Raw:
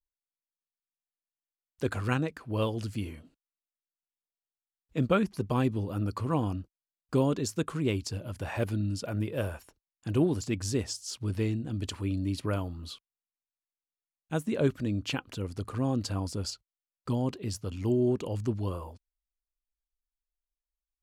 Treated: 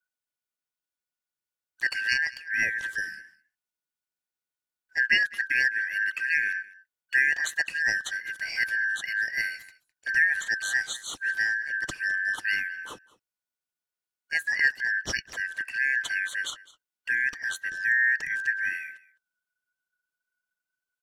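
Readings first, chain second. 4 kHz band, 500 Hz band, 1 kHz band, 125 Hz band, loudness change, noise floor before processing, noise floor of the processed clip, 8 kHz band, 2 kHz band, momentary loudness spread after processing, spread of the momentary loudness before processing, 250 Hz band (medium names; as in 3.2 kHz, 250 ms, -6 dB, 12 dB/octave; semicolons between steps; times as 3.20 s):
+6.0 dB, -20.5 dB, -10.5 dB, under -25 dB, +5.5 dB, under -85 dBFS, under -85 dBFS, +3.0 dB, +22.0 dB, 10 LU, 11 LU, under -20 dB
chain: four frequency bands reordered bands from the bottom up 3142; delay 208 ms -21 dB; trim +2.5 dB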